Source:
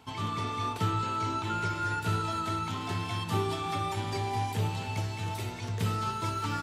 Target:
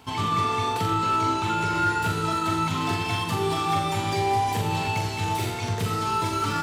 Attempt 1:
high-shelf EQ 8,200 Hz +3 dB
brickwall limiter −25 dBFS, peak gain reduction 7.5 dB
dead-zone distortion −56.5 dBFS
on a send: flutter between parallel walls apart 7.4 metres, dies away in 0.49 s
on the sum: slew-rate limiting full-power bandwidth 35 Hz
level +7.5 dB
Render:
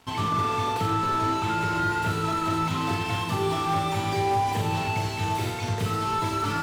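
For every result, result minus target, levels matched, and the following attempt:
slew-rate limiting: distortion +16 dB; dead-zone distortion: distortion +10 dB
high-shelf EQ 8,200 Hz +3 dB
brickwall limiter −25 dBFS, peak gain reduction 7.5 dB
dead-zone distortion −56.5 dBFS
on a send: flutter between parallel walls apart 7.4 metres, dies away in 0.49 s
on the sum: slew-rate limiting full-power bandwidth 70 Hz
level +7.5 dB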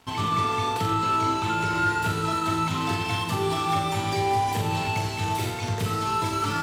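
dead-zone distortion: distortion +10 dB
high-shelf EQ 8,200 Hz +3 dB
brickwall limiter −25 dBFS, peak gain reduction 7.5 dB
dead-zone distortion −67 dBFS
on a send: flutter between parallel walls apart 7.4 metres, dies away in 0.49 s
on the sum: slew-rate limiting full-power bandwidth 70 Hz
level +7.5 dB

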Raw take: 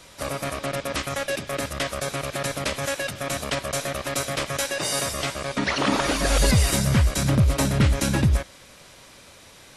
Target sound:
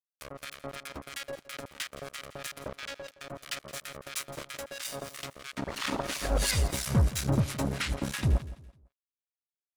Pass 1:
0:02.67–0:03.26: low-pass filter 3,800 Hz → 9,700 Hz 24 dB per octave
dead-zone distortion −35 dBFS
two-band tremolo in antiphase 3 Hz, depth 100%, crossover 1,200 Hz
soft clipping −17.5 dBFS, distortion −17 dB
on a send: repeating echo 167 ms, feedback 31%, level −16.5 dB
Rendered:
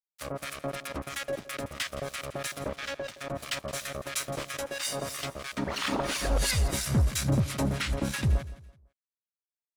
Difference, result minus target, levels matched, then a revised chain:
soft clipping: distortion +15 dB; dead-zone distortion: distortion −8 dB
0:02.67–0:03.26: low-pass filter 3,800 Hz → 9,700 Hz 24 dB per octave
dead-zone distortion −25.5 dBFS
two-band tremolo in antiphase 3 Hz, depth 100%, crossover 1,200 Hz
soft clipping −9.5 dBFS, distortion −32 dB
on a send: repeating echo 167 ms, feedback 31%, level −16.5 dB

